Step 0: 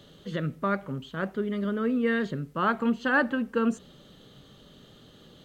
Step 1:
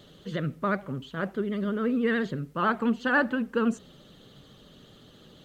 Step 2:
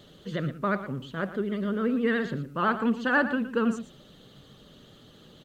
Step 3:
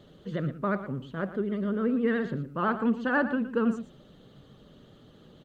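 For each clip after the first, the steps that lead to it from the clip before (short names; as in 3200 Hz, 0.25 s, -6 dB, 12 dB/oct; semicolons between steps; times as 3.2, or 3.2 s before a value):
short-mantissa float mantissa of 8-bit; vibrato 14 Hz 73 cents
echo 0.115 s -12.5 dB
high shelf 2100 Hz -10.5 dB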